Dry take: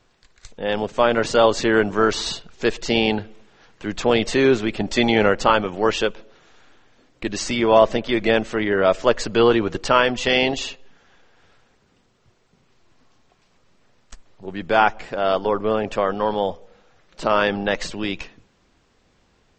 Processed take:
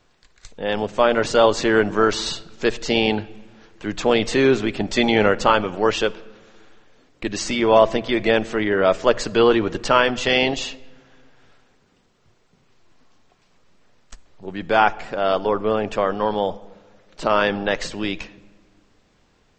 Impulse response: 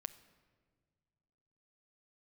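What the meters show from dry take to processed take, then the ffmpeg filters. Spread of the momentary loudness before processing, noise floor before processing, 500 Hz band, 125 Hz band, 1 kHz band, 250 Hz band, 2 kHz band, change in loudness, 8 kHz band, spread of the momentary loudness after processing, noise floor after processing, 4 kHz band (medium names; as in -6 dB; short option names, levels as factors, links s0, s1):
11 LU, -62 dBFS, +0.5 dB, -0.5 dB, 0.0 dB, 0.0 dB, +0.5 dB, 0.0 dB, 0.0 dB, 11 LU, -61 dBFS, 0.0 dB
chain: -filter_complex "[0:a]bandreject=f=60:t=h:w=6,bandreject=f=120:t=h:w=6,asplit=2[s0][s1];[1:a]atrim=start_sample=2205[s2];[s1][s2]afir=irnorm=-1:irlink=0,volume=1.58[s3];[s0][s3]amix=inputs=2:normalize=0,volume=0.501"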